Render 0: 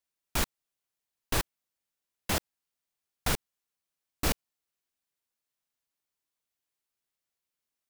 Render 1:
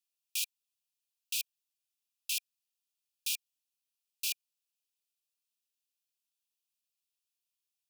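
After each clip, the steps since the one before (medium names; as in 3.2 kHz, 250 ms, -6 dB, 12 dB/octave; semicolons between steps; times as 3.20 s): Chebyshev high-pass 2.4 kHz, order 10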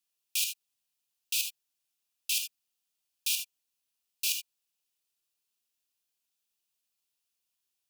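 gated-style reverb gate 100 ms rising, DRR 6 dB; trim +4 dB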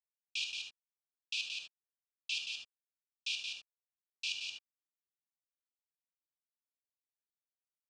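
delay 175 ms -4.5 dB; crossover distortion -58.5 dBFS; Gaussian low-pass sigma 2 samples; trim +1 dB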